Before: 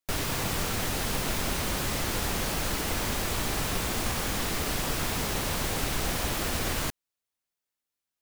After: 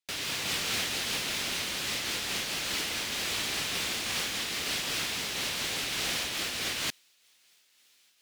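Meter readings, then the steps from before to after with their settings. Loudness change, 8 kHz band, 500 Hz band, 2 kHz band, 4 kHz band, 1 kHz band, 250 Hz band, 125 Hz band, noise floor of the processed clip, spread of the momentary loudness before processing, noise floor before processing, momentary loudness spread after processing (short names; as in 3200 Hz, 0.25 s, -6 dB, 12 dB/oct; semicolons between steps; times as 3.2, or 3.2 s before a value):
-1.0 dB, -1.0 dB, -7.5 dB, +1.0 dB, +4.0 dB, -6.5 dB, -9.0 dB, -13.5 dB, -66 dBFS, 0 LU, under -85 dBFS, 2 LU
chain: weighting filter D; reverse; upward compressor, threshold -36 dBFS; reverse; noise-modulated level, depth 60%; gain -4 dB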